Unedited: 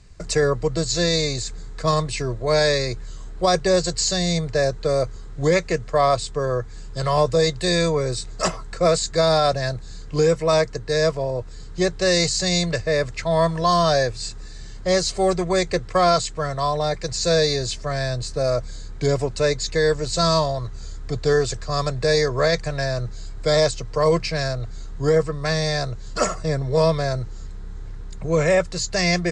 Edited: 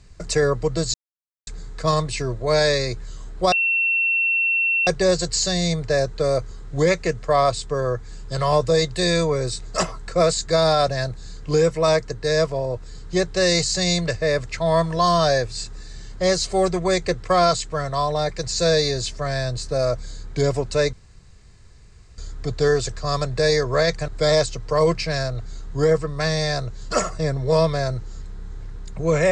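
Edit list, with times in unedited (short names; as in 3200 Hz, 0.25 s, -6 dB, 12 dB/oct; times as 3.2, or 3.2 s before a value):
0.94–1.47 mute
3.52 add tone 2710 Hz -17 dBFS 1.35 s
19.58–20.83 room tone
22.73–23.33 cut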